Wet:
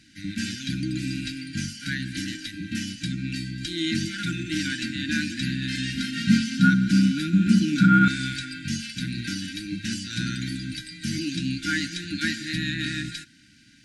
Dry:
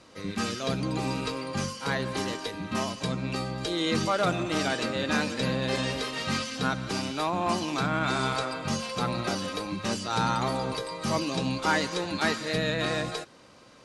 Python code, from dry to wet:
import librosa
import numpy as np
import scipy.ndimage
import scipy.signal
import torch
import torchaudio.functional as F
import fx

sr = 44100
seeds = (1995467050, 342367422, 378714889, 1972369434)

y = fx.brickwall_bandstop(x, sr, low_hz=330.0, high_hz=1400.0)
y = fx.dynamic_eq(y, sr, hz=340.0, q=4.4, threshold_db=-49.0, ratio=4.0, max_db=6)
y = fx.small_body(y, sr, hz=(200.0, 1400.0), ring_ms=75, db=18, at=(5.97, 8.08))
y = F.gain(torch.from_numpy(y), 1.5).numpy()